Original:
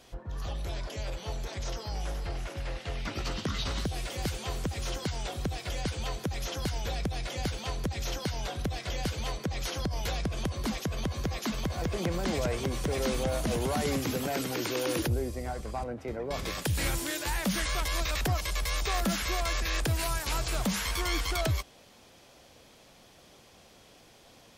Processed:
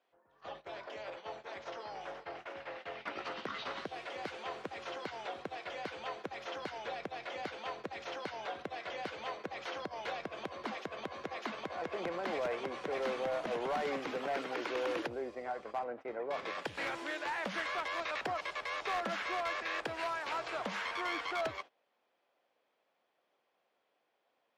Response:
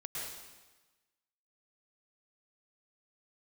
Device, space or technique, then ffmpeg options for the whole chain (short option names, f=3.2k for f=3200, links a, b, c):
walkie-talkie: -af "highpass=490,lowpass=2.2k,asoftclip=type=hard:threshold=-29.5dB,agate=range=-18dB:threshold=-47dB:ratio=16:detection=peak"